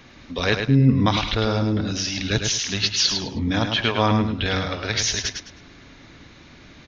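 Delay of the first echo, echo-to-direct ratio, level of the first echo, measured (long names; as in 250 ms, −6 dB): 105 ms, −5.5 dB, −6.0 dB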